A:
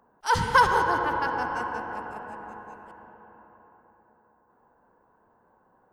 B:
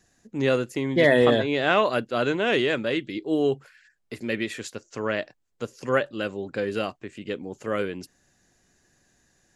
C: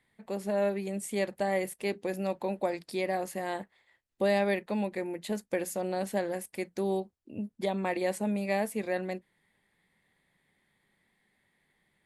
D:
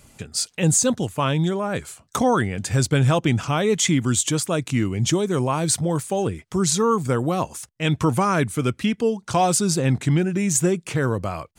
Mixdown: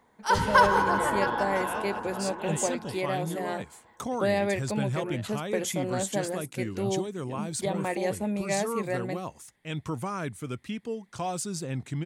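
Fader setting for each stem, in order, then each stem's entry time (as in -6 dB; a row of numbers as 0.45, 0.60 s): -1.0, -17.5, +0.5, -13.0 dB; 0.00, 0.00, 0.00, 1.85 s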